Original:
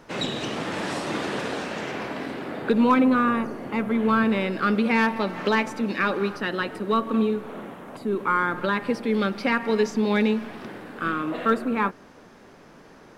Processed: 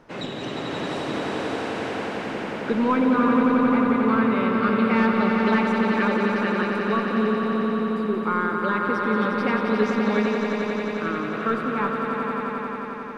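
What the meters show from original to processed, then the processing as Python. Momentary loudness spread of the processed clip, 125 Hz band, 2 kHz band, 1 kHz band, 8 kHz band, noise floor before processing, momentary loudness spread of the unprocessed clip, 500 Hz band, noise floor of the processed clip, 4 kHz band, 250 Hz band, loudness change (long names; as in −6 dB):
10 LU, +2.5 dB, +1.0 dB, +2.0 dB, can't be measured, −50 dBFS, 10 LU, +2.0 dB, −32 dBFS, −1.5 dB, +2.5 dB, +1.5 dB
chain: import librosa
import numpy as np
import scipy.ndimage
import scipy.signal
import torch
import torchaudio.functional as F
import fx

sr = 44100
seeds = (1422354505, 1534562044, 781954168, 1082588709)

y = fx.high_shelf(x, sr, hz=4000.0, db=-9.5)
y = fx.echo_swell(y, sr, ms=89, loudest=5, wet_db=-6.5)
y = F.gain(torch.from_numpy(y), -2.5).numpy()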